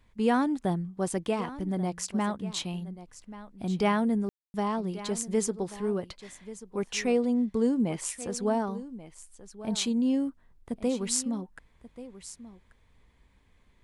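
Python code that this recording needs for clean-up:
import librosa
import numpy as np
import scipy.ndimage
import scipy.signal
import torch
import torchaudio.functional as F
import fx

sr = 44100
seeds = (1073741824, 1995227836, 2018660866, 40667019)

y = fx.fix_ambience(x, sr, seeds[0], print_start_s=13.27, print_end_s=13.77, start_s=4.29, end_s=4.54)
y = fx.fix_echo_inverse(y, sr, delay_ms=1135, level_db=-15.5)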